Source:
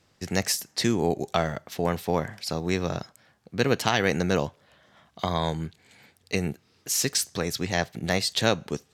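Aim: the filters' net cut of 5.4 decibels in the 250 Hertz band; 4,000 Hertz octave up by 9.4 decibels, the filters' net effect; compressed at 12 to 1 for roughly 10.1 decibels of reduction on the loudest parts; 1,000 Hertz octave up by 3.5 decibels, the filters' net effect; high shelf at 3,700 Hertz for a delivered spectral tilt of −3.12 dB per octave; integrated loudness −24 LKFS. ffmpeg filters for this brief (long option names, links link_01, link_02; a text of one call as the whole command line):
ffmpeg -i in.wav -af "equalizer=frequency=250:width_type=o:gain=-8.5,equalizer=frequency=1000:width_type=o:gain=4.5,highshelf=frequency=3700:gain=8.5,equalizer=frequency=4000:width_type=o:gain=5.5,acompressor=threshold=-23dB:ratio=12,volume=5dB" out.wav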